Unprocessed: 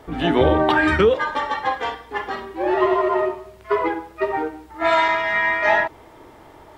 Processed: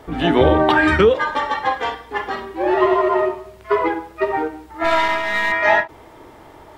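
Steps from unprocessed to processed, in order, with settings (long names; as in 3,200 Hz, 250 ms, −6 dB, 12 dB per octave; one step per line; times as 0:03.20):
0:04.84–0:05.52: gain on one half-wave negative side −7 dB
every ending faded ahead of time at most 290 dB per second
level +2.5 dB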